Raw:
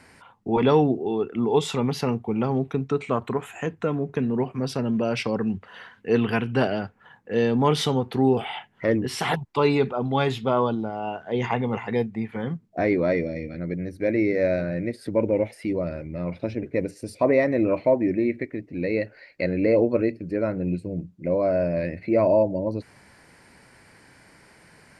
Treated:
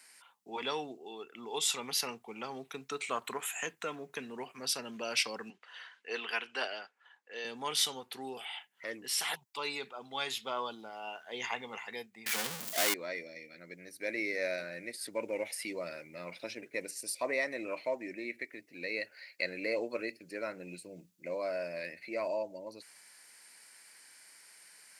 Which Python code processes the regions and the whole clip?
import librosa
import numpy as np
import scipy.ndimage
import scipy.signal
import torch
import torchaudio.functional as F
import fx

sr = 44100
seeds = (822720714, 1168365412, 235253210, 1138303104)

y = fx.chain(x, sr, fx.highpass(hz=370.0, slope=12),
    fx.air_absorb(metres=81.0), at=(5.5, 7.45))
y = fx.chain(y, sr, fx.power_curve(exponent=0.35),
    fx.sustainer(db_per_s=73.0), at=(12.26, 12.94))
y = scipy.signal.sosfilt(scipy.signal.butter(2, 130.0, 'highpass', fs=sr, output='sos'), y)
y = np.diff(y, prepend=0.0)
y = fx.rider(y, sr, range_db=10, speed_s=2.0)
y = F.gain(torch.from_numpy(y), 3.5).numpy()